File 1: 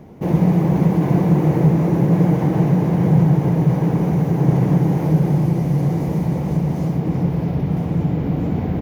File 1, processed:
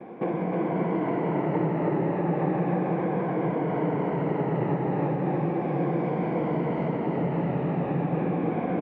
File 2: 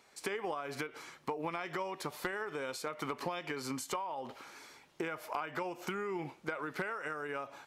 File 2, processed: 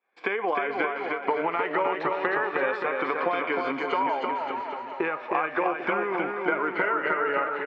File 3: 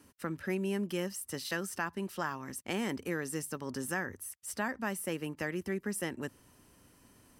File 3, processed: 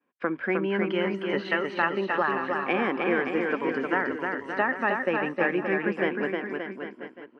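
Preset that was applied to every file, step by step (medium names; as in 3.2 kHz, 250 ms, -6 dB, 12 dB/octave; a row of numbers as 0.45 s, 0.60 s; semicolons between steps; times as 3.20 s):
drifting ripple filter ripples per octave 1.8, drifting -0.36 Hz, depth 8 dB; high-pass 320 Hz 12 dB/octave; expander -50 dBFS; low-pass 2.6 kHz 24 dB/octave; compression 6:1, threshold -30 dBFS; on a send: bouncing-ball echo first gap 310 ms, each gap 0.85×, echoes 5; on the sum: normalise loudness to -27 LUFS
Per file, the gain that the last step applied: +4.5 dB, +11.0 dB, +11.0 dB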